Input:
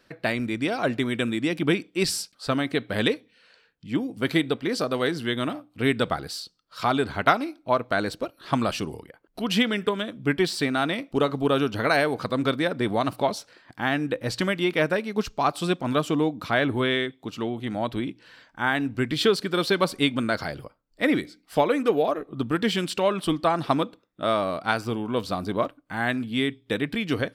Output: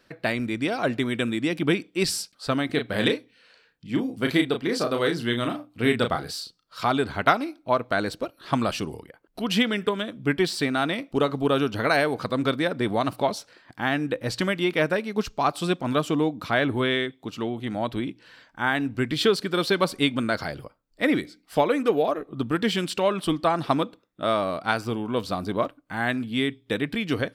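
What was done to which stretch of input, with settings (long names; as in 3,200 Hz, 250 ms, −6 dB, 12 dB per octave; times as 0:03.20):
0:02.66–0:06.81: double-tracking delay 34 ms −6 dB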